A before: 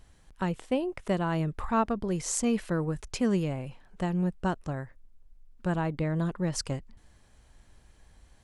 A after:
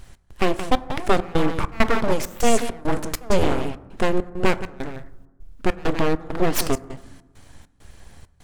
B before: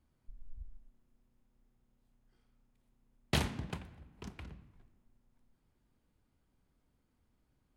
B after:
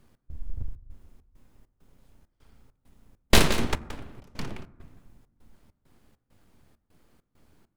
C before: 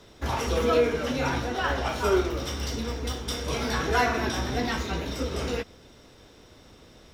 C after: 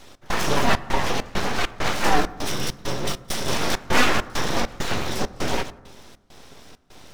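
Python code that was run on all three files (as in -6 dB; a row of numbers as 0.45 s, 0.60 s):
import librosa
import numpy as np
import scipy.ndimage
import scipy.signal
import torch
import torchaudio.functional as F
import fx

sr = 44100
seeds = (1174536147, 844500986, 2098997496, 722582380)

y = fx.comb_fb(x, sr, f0_hz=110.0, decay_s=0.4, harmonics='all', damping=0.0, mix_pct=40)
y = y + 10.0 ** (-11.0 / 20.0) * np.pad(y, (int(173 * sr / 1000.0), 0))[:len(y)]
y = np.abs(y)
y = fx.step_gate(y, sr, bpm=100, pattern='x.xxx.xx.x', floor_db=-24.0, edge_ms=4.5)
y = fx.rev_fdn(y, sr, rt60_s=1.2, lf_ratio=1.45, hf_ratio=0.35, size_ms=78.0, drr_db=15.5)
y = librosa.util.normalize(y) * 10.0 ** (-3 / 20.0)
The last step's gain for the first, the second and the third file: +16.5 dB, +19.5 dB, +11.0 dB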